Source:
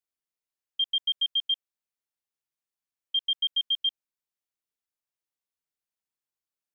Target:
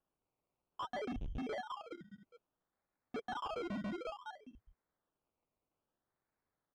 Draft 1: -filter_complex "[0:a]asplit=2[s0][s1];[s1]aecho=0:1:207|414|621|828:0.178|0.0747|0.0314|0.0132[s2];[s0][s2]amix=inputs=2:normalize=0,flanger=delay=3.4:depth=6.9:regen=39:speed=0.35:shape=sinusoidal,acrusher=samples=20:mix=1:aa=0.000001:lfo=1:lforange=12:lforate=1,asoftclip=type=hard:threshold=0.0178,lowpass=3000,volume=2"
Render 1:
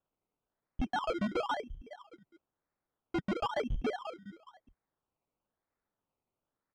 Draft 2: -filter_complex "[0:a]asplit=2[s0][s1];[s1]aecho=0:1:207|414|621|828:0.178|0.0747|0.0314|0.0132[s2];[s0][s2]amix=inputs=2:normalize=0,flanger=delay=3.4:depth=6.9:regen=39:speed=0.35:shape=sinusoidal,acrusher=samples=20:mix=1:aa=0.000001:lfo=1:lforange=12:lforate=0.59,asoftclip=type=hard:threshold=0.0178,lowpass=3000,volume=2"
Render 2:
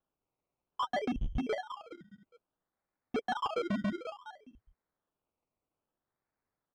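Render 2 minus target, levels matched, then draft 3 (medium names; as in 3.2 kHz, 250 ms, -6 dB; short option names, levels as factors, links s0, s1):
hard clipper: distortion -5 dB
-filter_complex "[0:a]asplit=2[s0][s1];[s1]aecho=0:1:207|414|621|828:0.178|0.0747|0.0314|0.0132[s2];[s0][s2]amix=inputs=2:normalize=0,flanger=delay=3.4:depth=6.9:regen=39:speed=0.35:shape=sinusoidal,acrusher=samples=20:mix=1:aa=0.000001:lfo=1:lforange=12:lforate=0.59,asoftclip=type=hard:threshold=0.00596,lowpass=3000,volume=2"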